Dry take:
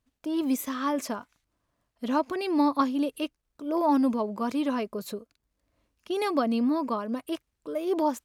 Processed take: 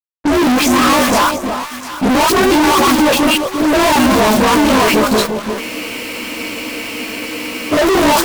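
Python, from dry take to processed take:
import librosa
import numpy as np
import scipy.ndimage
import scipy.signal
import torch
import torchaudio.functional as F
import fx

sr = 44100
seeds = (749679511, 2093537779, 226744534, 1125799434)

p1 = fx.frame_reverse(x, sr, frame_ms=47.0)
p2 = scipy.signal.sosfilt(scipy.signal.butter(2, 6500.0, 'lowpass', fs=sr, output='sos'), p1)
p3 = fx.peak_eq(p2, sr, hz=960.0, db=9.0, octaves=1.5)
p4 = fx.quant_companded(p3, sr, bits=4)
p5 = p3 + (p4 * 10.0 ** (-5.0 / 20.0))
p6 = fx.dispersion(p5, sr, late='highs', ms=113.0, hz=990.0)
p7 = fx.fuzz(p6, sr, gain_db=43.0, gate_db=-48.0)
p8 = p7 + fx.echo_alternate(p7, sr, ms=350, hz=970.0, feedback_pct=51, wet_db=-6, dry=0)
p9 = fx.spec_freeze(p8, sr, seeds[0], at_s=5.62, hold_s=2.11)
y = p9 * 10.0 ** (2.5 / 20.0)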